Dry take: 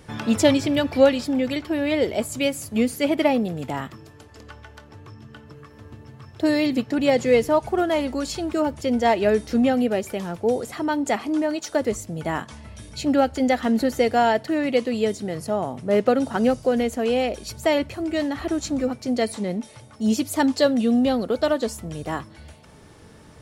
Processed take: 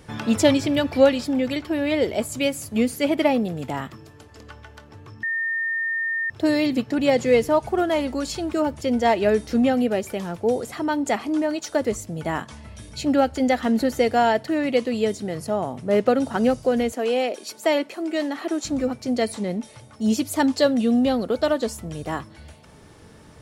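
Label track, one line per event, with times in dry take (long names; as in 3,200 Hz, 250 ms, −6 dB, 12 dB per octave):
5.230000	6.300000	beep over 1,820 Hz −22 dBFS
16.920000	18.650000	high-pass filter 260 Hz 24 dB per octave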